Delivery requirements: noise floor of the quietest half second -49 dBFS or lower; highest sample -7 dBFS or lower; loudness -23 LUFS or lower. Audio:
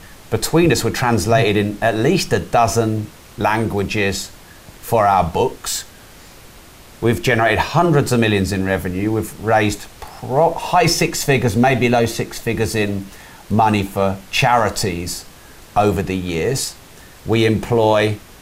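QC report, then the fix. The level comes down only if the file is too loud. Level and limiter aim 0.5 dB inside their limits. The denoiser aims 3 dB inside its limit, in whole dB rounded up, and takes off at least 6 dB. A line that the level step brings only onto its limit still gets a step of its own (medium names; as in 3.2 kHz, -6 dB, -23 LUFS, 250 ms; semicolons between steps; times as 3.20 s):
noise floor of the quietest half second -42 dBFS: fail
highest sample -4.0 dBFS: fail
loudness -17.5 LUFS: fail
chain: noise reduction 6 dB, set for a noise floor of -42 dBFS; trim -6 dB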